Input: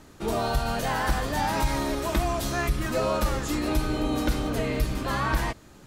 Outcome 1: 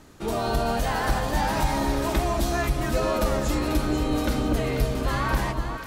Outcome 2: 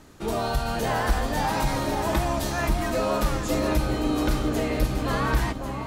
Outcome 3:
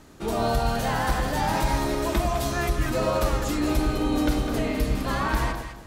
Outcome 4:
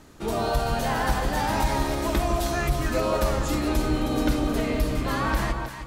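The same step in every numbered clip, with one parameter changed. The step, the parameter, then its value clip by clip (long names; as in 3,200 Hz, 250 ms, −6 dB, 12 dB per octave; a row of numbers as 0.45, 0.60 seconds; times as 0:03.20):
delay that swaps between a low-pass and a high-pass, delay time: 245, 547, 103, 157 milliseconds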